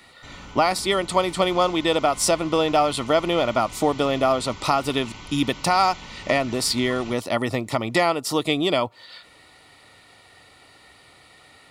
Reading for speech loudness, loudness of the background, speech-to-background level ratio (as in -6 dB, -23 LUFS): -22.0 LUFS, -40.0 LUFS, 18.0 dB